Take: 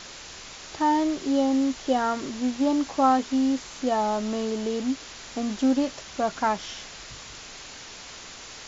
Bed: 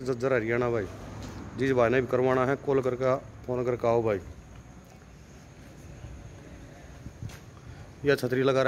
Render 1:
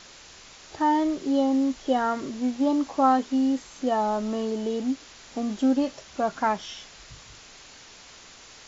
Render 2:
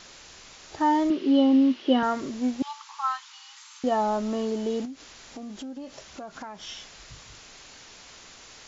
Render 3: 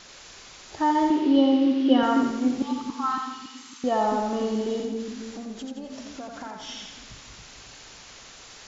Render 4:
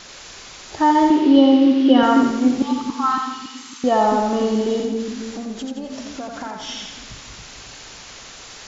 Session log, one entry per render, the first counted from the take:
noise print and reduce 6 dB
1.10–2.03 s: cabinet simulation 220–4800 Hz, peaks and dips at 240 Hz +8 dB, 350 Hz +8 dB, 740 Hz -5 dB, 2.9 kHz +9 dB; 2.62–3.84 s: rippled Chebyshev high-pass 870 Hz, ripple 3 dB; 4.85–6.67 s: compression, threshold -36 dBFS
two-band feedback delay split 370 Hz, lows 278 ms, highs 86 ms, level -4 dB
trim +7 dB; peak limiter -2 dBFS, peak gain reduction 3 dB

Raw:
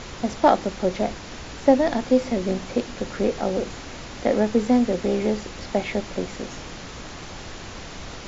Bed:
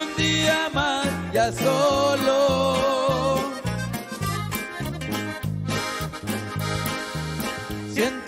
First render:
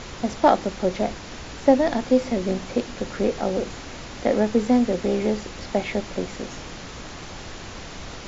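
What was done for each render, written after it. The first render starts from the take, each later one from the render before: no audible change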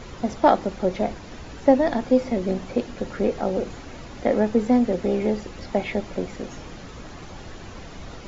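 noise reduction 8 dB, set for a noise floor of -38 dBFS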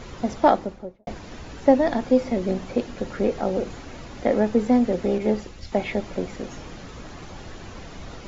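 0.41–1.07 s: studio fade out; 5.18–5.72 s: three bands expanded up and down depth 100%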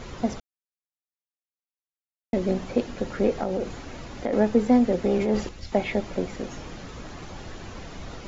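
0.40–2.33 s: mute; 3.42–4.33 s: compression, threshold -22 dBFS; 5.06–5.49 s: transient shaper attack -8 dB, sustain +6 dB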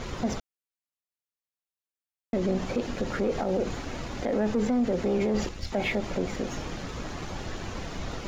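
waveshaping leveller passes 1; peak limiter -19 dBFS, peak gain reduction 11 dB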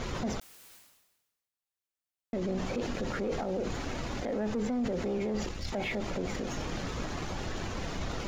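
peak limiter -25.5 dBFS, peak gain reduction 6.5 dB; decay stretcher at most 52 dB/s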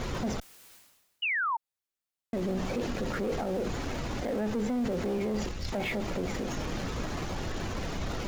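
in parallel at -10.5 dB: Schmitt trigger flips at -39.5 dBFS; 1.22–1.57 s: on the sum: painted sound fall 870–3000 Hz -29 dBFS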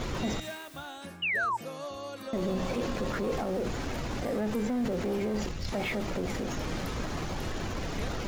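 add bed -19.5 dB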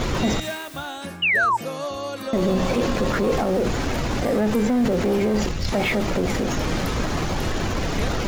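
trim +10 dB

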